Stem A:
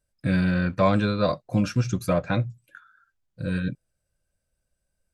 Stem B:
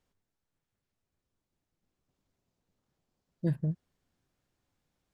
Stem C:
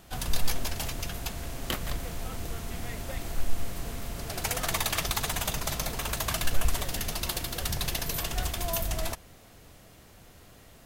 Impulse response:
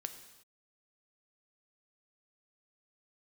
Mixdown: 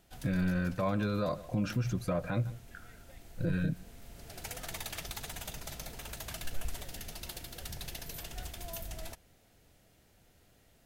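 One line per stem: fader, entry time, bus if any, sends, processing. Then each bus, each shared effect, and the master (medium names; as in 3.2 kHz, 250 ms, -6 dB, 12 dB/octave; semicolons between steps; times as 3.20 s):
-3.0 dB, 0.00 s, no send, echo send -24 dB, treble shelf 4.1 kHz -8.5 dB
-1.0 dB, 0.00 s, no send, no echo send, none
-11.5 dB, 0.00 s, no send, no echo send, peaking EQ 1.1 kHz -8 dB 0.29 oct; auto duck -6 dB, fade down 0.40 s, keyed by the first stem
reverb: none
echo: delay 153 ms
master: peak limiter -23 dBFS, peak gain reduction 11 dB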